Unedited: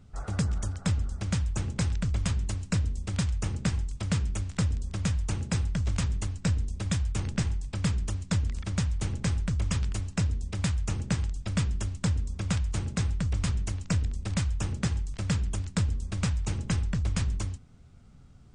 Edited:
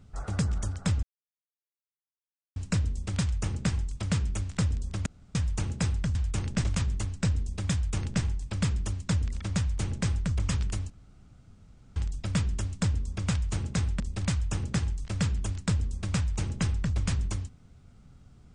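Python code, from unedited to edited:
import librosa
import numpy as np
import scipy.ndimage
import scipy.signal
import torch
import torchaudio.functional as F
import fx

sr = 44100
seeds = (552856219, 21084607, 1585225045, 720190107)

y = fx.edit(x, sr, fx.silence(start_s=1.03, length_s=1.53),
    fx.insert_room_tone(at_s=5.06, length_s=0.29),
    fx.duplicate(start_s=6.96, length_s=0.49, to_s=5.86),
    fx.room_tone_fill(start_s=10.12, length_s=1.06),
    fx.cut(start_s=13.22, length_s=0.87), tone=tone)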